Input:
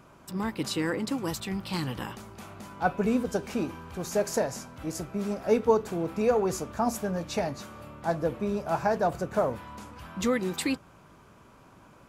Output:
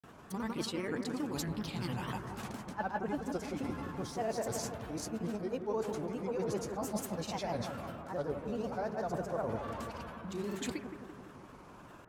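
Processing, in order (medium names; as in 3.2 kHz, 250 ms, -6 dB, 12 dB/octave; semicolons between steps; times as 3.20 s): reverse; compression 6:1, threshold -35 dBFS, peak gain reduction 17.5 dB; reverse; granulator, pitch spread up and down by 3 st; bucket-brigade echo 170 ms, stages 2048, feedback 64%, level -7.5 dB; trim +1.5 dB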